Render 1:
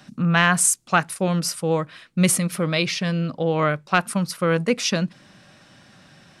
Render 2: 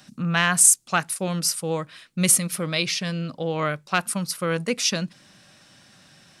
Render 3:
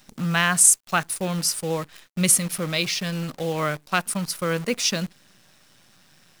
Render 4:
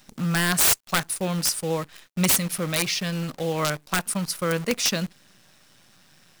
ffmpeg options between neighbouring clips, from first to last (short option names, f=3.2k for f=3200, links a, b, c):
-af "highshelf=f=3.6k:g=10.5,volume=-5dB"
-af "acrusher=bits=7:dc=4:mix=0:aa=0.000001"
-af "aeval=exprs='(mod(4.22*val(0)+1,2)-1)/4.22':c=same"